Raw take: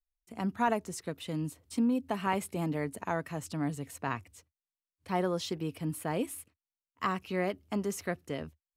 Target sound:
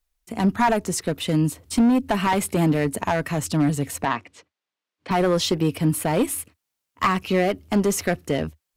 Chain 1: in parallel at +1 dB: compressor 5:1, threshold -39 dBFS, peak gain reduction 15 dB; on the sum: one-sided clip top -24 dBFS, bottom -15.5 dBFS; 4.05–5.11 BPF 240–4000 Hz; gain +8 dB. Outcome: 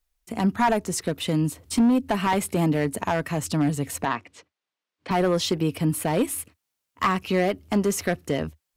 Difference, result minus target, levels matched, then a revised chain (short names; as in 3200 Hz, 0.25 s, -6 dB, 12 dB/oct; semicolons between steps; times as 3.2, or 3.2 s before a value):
compressor: peak gain reduction +8 dB
in parallel at +1 dB: compressor 5:1, threshold -29 dBFS, peak gain reduction 7 dB; on the sum: one-sided clip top -24 dBFS, bottom -15.5 dBFS; 4.05–5.11 BPF 240–4000 Hz; gain +8 dB